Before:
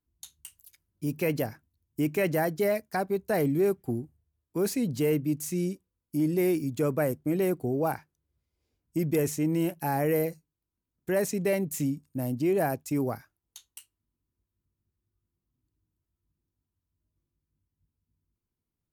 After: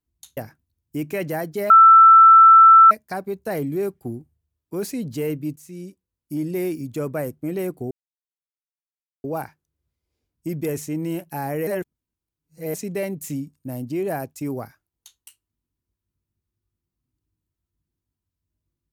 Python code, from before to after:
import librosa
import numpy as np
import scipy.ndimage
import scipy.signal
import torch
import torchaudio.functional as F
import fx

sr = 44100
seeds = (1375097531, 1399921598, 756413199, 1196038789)

y = fx.edit(x, sr, fx.cut(start_s=0.37, length_s=1.04),
    fx.insert_tone(at_s=2.74, length_s=1.21, hz=1330.0, db=-6.0),
    fx.fade_in_from(start_s=5.39, length_s=0.78, floor_db=-13.5),
    fx.insert_silence(at_s=7.74, length_s=1.33),
    fx.reverse_span(start_s=10.17, length_s=1.07), tone=tone)